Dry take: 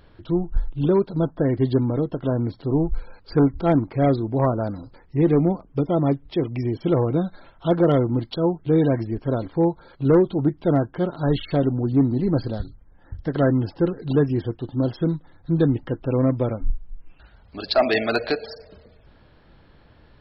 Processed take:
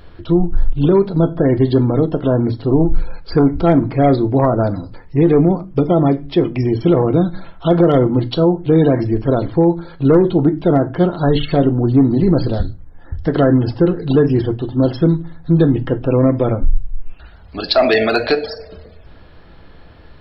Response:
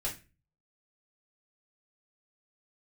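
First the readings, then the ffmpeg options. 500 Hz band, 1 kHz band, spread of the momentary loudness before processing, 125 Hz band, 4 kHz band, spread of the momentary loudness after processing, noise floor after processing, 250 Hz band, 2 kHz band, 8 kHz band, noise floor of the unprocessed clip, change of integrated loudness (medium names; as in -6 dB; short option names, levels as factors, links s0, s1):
+7.0 dB, +7.0 dB, 10 LU, +6.5 dB, +8.0 dB, 9 LU, -41 dBFS, +7.0 dB, +6.5 dB, no reading, -53 dBFS, +7.0 dB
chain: -filter_complex "[0:a]asplit=2[s0][s1];[1:a]atrim=start_sample=2205[s2];[s1][s2]afir=irnorm=-1:irlink=0,volume=0.299[s3];[s0][s3]amix=inputs=2:normalize=0,alimiter=level_in=3.55:limit=0.891:release=50:level=0:latency=1,volume=0.668"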